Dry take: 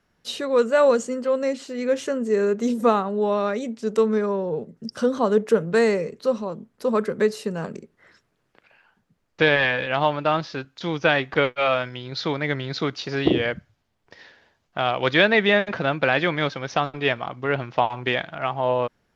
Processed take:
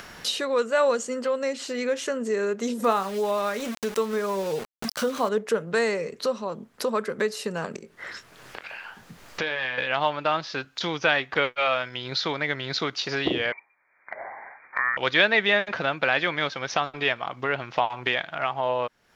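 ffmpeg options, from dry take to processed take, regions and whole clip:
-filter_complex "[0:a]asettb=1/sr,asplit=3[a][b][c];[a]atrim=end=2.844[d];[b]atrim=start=2.84:end=5.29,asetpts=PTS-STARTPTS,afade=t=in:d=0.004:c=qsin,afade=t=out:st=2.446:d=0.004:c=qsin,asplit=2[e][f];[f]adelay=26,volume=-12.5dB[g];[e][g]amix=inputs=2:normalize=0,atrim=end_sample=108045,aeval=exprs='val(0)*gte(abs(val(0)),0.0188)':c=same[h];[c]atrim=start=5.286[i];[d][h]acrossfade=d=0.004:c1=hsin:c2=qsin[j];[j][i]acrossfade=d=0.004:c1=qsin:c2=hsin,asettb=1/sr,asplit=3[k][l][m];[k]atrim=end=7.764[n];[l]atrim=start=7.76:end=9.78,asetpts=PTS-STARTPTS,afade=t=in:d=0.004:c=qsin,afade=t=out:st=2.016:d=0.004:c=qsin,acompressor=threshold=-47dB:ratio=1.5:attack=3.2:release=140:knee=1:detection=peak,asplit=2[o][p];[p]adelay=23,volume=-10.5dB[q];[o][q]amix=inputs=2:normalize=0,atrim=end_sample=89082[r];[m]atrim=start=9.776[s];[n][r]acrossfade=d=0.004:c1=hsin:c2=qsin[t];[t][s]acrossfade=d=0.004:c1=qsin:c2=hsin,asettb=1/sr,asplit=3[u][v][w];[u]atrim=end=13.524[x];[v]atrim=start=13.52:end=14.97,asetpts=PTS-STARTPTS,afade=t=in:d=0.004:c=qsin,afade=t=out:st=1.446:d=0.004:c=qsin,highpass=f=510:p=1,lowpass=f=2.1k:t=q:w=0.5098,lowpass=f=2.1k:t=q:w=0.6013,lowpass=f=2.1k:t=q:w=0.9,lowpass=f=2.1k:t=q:w=2.563,afreqshift=-2500[y];[w]atrim=start=14.966[z];[x][y]acrossfade=d=0.004:c1=hsin:c2=qsin[aa];[aa][z]acrossfade=d=0.004:c1=qsin:c2=hsin,lowshelf=f=500:g=-11,acompressor=mode=upward:threshold=-21dB:ratio=2.5"

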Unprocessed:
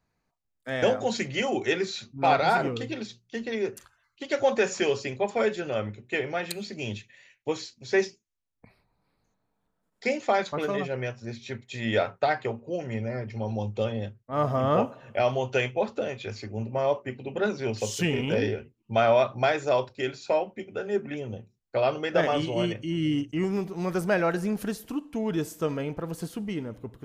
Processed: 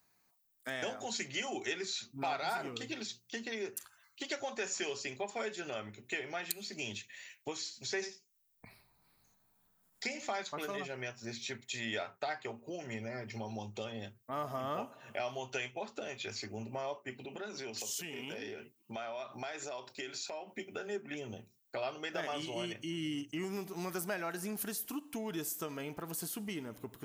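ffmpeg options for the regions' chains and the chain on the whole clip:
-filter_complex "[0:a]asettb=1/sr,asplit=3[a][b][c];[a]atrim=end=7.574[d];[b]atrim=start=7.57:end=10.37,asetpts=PTS-STARTPTS,afade=t=in:d=0.004:c=qsin,afade=t=out:st=2.796:d=0.004:c=qsin,asubboost=boost=5:cutoff=160,aecho=1:1:86:0.2,atrim=end_sample=123480[e];[c]atrim=start=10.366[f];[d][e]acrossfade=d=0.004:c1=hsin:c2=qsin[g];[g][f]acrossfade=d=0.004:c1=qsin:c2=hsin,asettb=1/sr,asplit=3[h][i][j];[h]atrim=end=17.254[k];[i]atrim=start=17.25:end=20.52,asetpts=PTS-STARTPTS,afade=t=in:d=0.004:c=qsin,afade=t=out:st=3.266:d=0.004:c=qsin,highpass=150,acompressor=threshold=-39dB:ratio=2.5:attack=3.2:release=140:knee=1:detection=peak[l];[j]atrim=start=20.516[m];[k][l]acrossfade=d=0.004:c1=hsin:c2=qsin[n];[n][m]acrossfade=d=0.004:c1=qsin:c2=hsin,aemphasis=mode=production:type=bsi,acompressor=threshold=-42dB:ratio=2.5,equalizer=f=510:t=o:w=0.26:g=-8.5,volume=2dB"

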